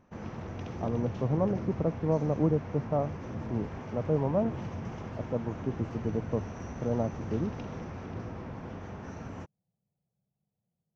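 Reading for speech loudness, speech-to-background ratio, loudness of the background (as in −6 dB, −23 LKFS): −32.0 LKFS, 7.5 dB, −39.5 LKFS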